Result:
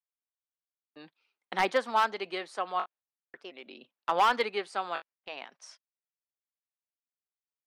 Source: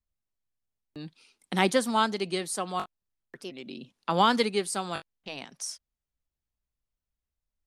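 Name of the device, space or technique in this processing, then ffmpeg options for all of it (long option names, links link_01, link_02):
walkie-talkie: -af "highpass=580,lowpass=2500,asoftclip=type=hard:threshold=-19dB,agate=range=-12dB:threshold=-55dB:ratio=16:detection=peak,volume=2dB"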